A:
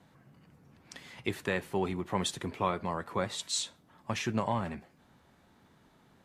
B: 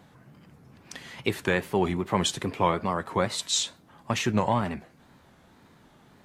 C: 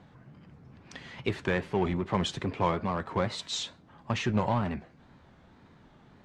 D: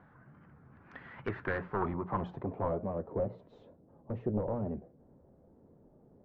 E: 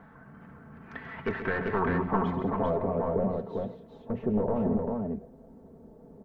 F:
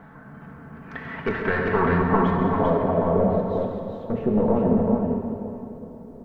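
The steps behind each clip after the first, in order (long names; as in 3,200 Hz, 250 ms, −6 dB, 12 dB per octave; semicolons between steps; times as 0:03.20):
tape wow and flutter 110 cents; level +6.5 dB
low-shelf EQ 120 Hz +6 dB; in parallel at −9 dB: wave folding −26 dBFS; on the sum: high-frequency loss of the air 110 metres; level −4 dB
wavefolder on the positive side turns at −24.5 dBFS; mains-hum notches 60/120/180 Hz; low-pass filter sweep 1,500 Hz → 510 Hz, 0:01.48–0:03.07; level −5.5 dB
comb filter 4.5 ms, depth 53%; in parallel at +1.5 dB: brickwall limiter −29.5 dBFS, peak gain reduction 10 dB; on the sum: multi-tap delay 134/179/394 ms −10.5/−12/−3.5 dB
dense smooth reverb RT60 3 s, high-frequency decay 0.9×, DRR 2.5 dB; level +5.5 dB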